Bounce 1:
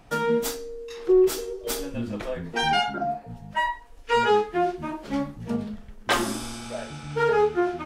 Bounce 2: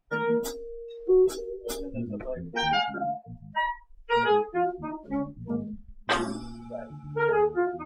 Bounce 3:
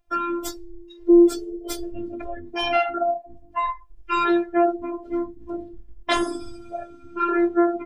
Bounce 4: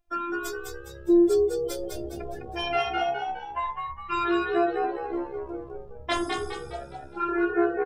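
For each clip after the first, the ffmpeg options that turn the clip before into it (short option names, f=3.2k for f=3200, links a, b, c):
-af "afftdn=nr=26:nf=-33,volume=-2.5dB"
-af "bandreject=f=50:t=h:w=6,bandreject=f=100:t=h:w=6,bandreject=f=150:t=h:w=6,afftfilt=real='hypot(re,im)*cos(PI*b)':imag='0':win_size=512:overlap=0.75,volume=8dB"
-filter_complex "[0:a]asplit=6[a][b][c][d][e][f];[b]adelay=206,afreqshift=67,volume=-4dB[g];[c]adelay=412,afreqshift=134,volume=-11.5dB[h];[d]adelay=618,afreqshift=201,volume=-19.1dB[i];[e]adelay=824,afreqshift=268,volume=-26.6dB[j];[f]adelay=1030,afreqshift=335,volume=-34.1dB[k];[a][g][h][i][j][k]amix=inputs=6:normalize=0,volume=-5.5dB"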